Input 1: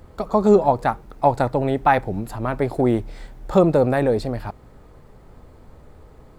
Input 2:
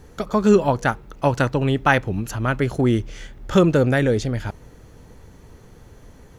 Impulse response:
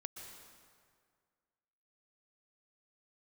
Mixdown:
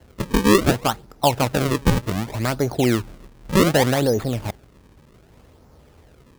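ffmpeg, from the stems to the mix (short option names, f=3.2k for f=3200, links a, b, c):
-filter_complex "[0:a]volume=-2.5dB,asplit=2[a][b];[1:a]acompressor=threshold=-21dB:ratio=6,volume=-4.5dB[c];[b]apad=whole_len=281415[d];[c][d]sidechaingate=range=-33dB:threshold=-36dB:ratio=16:detection=peak[e];[a][e]amix=inputs=2:normalize=0,highpass=50,acrusher=samples=36:mix=1:aa=0.000001:lfo=1:lforange=57.6:lforate=0.66"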